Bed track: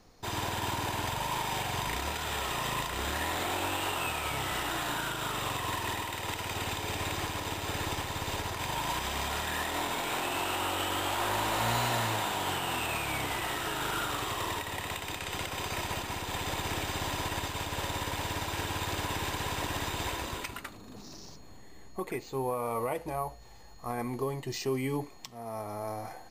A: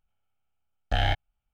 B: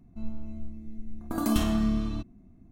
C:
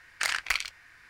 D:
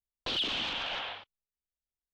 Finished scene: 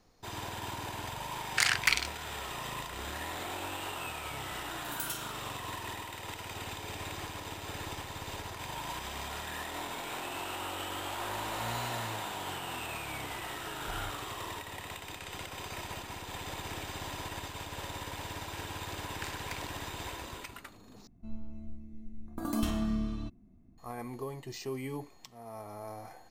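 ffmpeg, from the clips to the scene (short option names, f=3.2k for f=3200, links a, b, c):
-filter_complex "[3:a]asplit=2[a][b];[2:a]asplit=2[c][d];[0:a]volume=-6.5dB[e];[a]tiltshelf=f=630:g=-8[f];[c]aderivative[g];[b]acompressor=threshold=-42dB:ratio=6:attack=69:release=235:knee=1:detection=peak[h];[e]asplit=2[i][j];[i]atrim=end=21.074[k];[d]atrim=end=2.71,asetpts=PTS-STARTPTS,volume=-6dB[l];[j]atrim=start=23.776[m];[f]atrim=end=1.09,asetpts=PTS-STARTPTS,volume=-5dB,afade=t=in:d=0.004:c=hsin,afade=t=out:st=1.086:d=0.004:c=hsin,adelay=1370[n];[g]atrim=end=2.71,asetpts=PTS-STARTPTS,volume=-1.5dB,afade=t=in:d=0.004:c=hsin,afade=t=out:st=2.706:d=0.004:c=hsin,adelay=3540[o];[1:a]atrim=end=1.53,asetpts=PTS-STARTPTS,volume=-17.5dB,afade=t=in:d=0.004:c=hsin,afade=t=out:st=1.526:d=0.004:c=hsin,adelay=12960[p];[h]atrim=end=1.09,asetpts=PTS-STARTPTS,volume=-8.5dB,afade=t=in:d=0.004:c=hsin,afade=t=out:st=1.086:d=0.004:c=hsin,adelay=19010[q];[k][l]acrossfade=d=0.004:c1=hsin:c2=hsin[r];[r][m]acrossfade=d=0.004:c1=hsin:c2=hsin[s];[s][n][o][p][q]amix=inputs=5:normalize=0"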